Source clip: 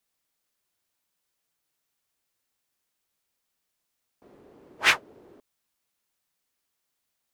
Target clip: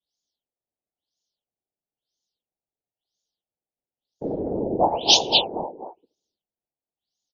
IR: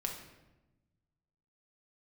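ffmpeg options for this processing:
-filter_complex "[0:a]asplit=2[link_01][link_02];[1:a]atrim=start_sample=2205[link_03];[link_02][link_03]afir=irnorm=-1:irlink=0,volume=-17dB[link_04];[link_01][link_04]amix=inputs=2:normalize=0,adynamicequalizer=threshold=0.00891:dfrequency=790:dqfactor=1.8:tfrequency=790:tqfactor=1.8:attack=5:release=100:ratio=0.375:range=3:mode=boostabove:tftype=bell,aecho=1:1:240|480|720|960:0.422|0.164|0.0641|0.025,afftdn=noise_reduction=34:noise_floor=-54,asuperstop=centerf=1600:order=12:qfactor=0.72,acompressor=threshold=-46dB:ratio=3,equalizer=frequency=120:width=3.9:gain=-5.5,crystalizer=i=3.5:c=0,afftfilt=real='hypot(re,im)*cos(2*PI*random(0))':imag='hypot(re,im)*sin(2*PI*random(1))':win_size=512:overlap=0.75,alimiter=level_in=33dB:limit=-1dB:release=50:level=0:latency=1,afftfilt=real='re*lt(b*sr/1024,990*pow(7100/990,0.5+0.5*sin(2*PI*1*pts/sr)))':imag='im*lt(b*sr/1024,990*pow(7100/990,0.5+0.5*sin(2*PI*1*pts/sr)))':win_size=1024:overlap=0.75"

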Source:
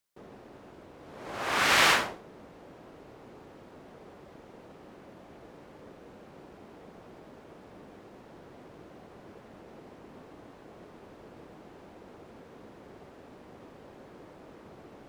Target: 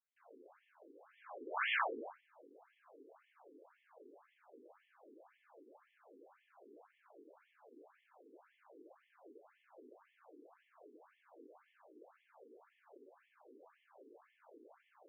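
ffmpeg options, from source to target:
ffmpeg -i in.wav -af "aemphasis=mode=reproduction:type=50fm,bandreject=frequency=1900:width=12,afftfilt=real='re*between(b*sr/1024,330*pow(2500/330,0.5+0.5*sin(2*PI*1.9*pts/sr))/1.41,330*pow(2500/330,0.5+0.5*sin(2*PI*1.9*pts/sr))*1.41)':imag='im*between(b*sr/1024,330*pow(2500/330,0.5+0.5*sin(2*PI*1.9*pts/sr))/1.41,330*pow(2500/330,0.5+0.5*sin(2*PI*1.9*pts/sr))*1.41)':win_size=1024:overlap=0.75,volume=-6.5dB" out.wav

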